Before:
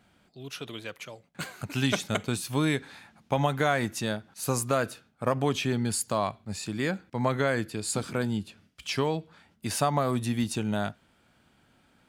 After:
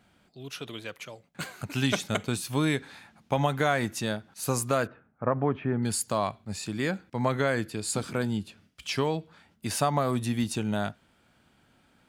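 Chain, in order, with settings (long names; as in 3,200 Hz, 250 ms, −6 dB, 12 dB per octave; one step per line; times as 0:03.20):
0:04.87–0:05.83: low-pass filter 1,800 Hz 24 dB per octave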